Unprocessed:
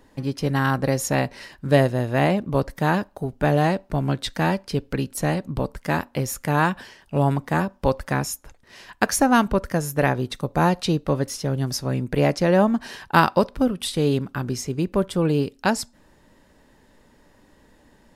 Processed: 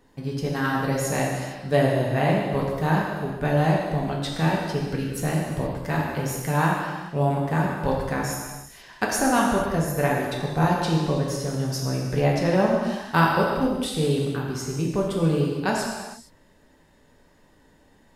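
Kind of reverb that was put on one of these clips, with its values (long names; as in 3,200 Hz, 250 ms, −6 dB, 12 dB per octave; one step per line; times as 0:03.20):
reverb whose tail is shaped and stops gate 490 ms falling, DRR −2.5 dB
level −6 dB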